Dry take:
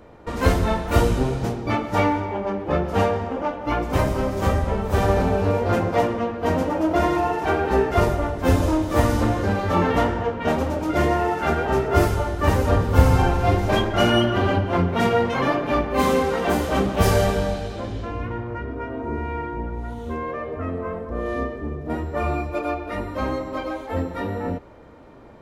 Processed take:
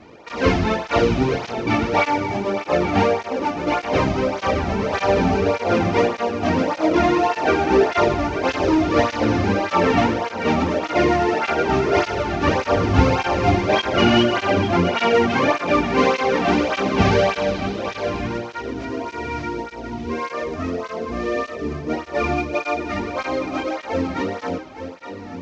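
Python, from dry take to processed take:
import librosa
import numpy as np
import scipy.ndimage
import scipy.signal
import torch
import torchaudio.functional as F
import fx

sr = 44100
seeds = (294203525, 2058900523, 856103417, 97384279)

p1 = fx.cvsd(x, sr, bps=32000)
p2 = fx.peak_eq(p1, sr, hz=2400.0, db=6.5, octaves=0.41)
p3 = p2 + fx.echo_single(p2, sr, ms=868, db=-9.5, dry=0)
p4 = fx.flanger_cancel(p3, sr, hz=1.7, depth_ms=2.2)
y = p4 * librosa.db_to_amplitude(5.5)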